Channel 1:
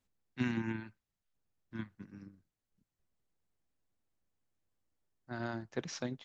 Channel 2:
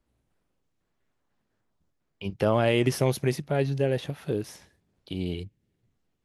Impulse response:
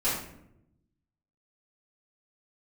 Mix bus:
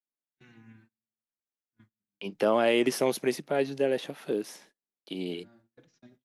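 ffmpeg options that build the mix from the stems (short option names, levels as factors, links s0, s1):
-filter_complex "[0:a]equalizer=f=970:t=o:w=0.25:g=-4.5,asplit=2[s0][s1];[s1]adelay=4.3,afreqshift=-1.7[s2];[s0][s2]amix=inputs=2:normalize=1,volume=0.168,asplit=2[s3][s4];[s4]volume=0.126[s5];[1:a]highpass=f=220:w=0.5412,highpass=f=220:w=1.3066,volume=1,asplit=2[s6][s7];[s7]apad=whole_len=275554[s8];[s3][s8]sidechaincompress=threshold=0.01:ratio=8:attack=16:release=651[s9];[2:a]atrim=start_sample=2205[s10];[s5][s10]afir=irnorm=-1:irlink=0[s11];[s9][s6][s11]amix=inputs=3:normalize=0,agate=range=0.0398:threshold=0.00126:ratio=16:detection=peak"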